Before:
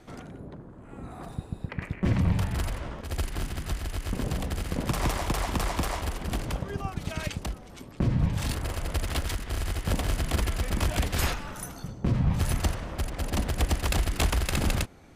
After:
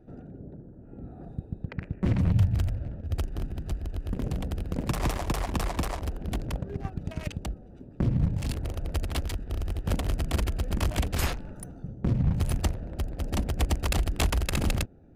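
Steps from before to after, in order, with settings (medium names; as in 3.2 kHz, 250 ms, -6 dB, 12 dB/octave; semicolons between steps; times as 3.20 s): local Wiener filter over 41 samples; 2.32–3.15 s: fifteen-band graphic EQ 100 Hz +9 dB, 400 Hz -5 dB, 1 kHz -5 dB, 10 kHz -4 dB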